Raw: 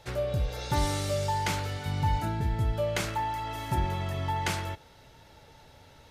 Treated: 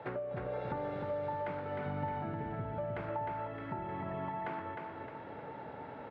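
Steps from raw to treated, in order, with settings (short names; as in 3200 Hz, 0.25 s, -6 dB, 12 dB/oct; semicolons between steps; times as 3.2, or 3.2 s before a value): HPF 78 Hz; three-band isolator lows -19 dB, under 160 Hz, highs -15 dB, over 2100 Hz; compressor 12:1, threshold -47 dBFS, peak gain reduction 21 dB; air absorption 460 m; feedback echo 0.308 s, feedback 48%, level -4 dB; gain +11.5 dB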